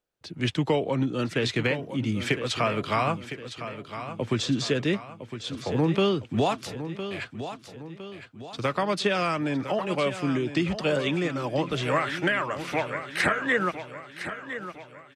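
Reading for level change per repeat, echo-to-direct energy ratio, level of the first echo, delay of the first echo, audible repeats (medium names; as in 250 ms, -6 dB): -7.0 dB, -10.0 dB, -11.0 dB, 1009 ms, 4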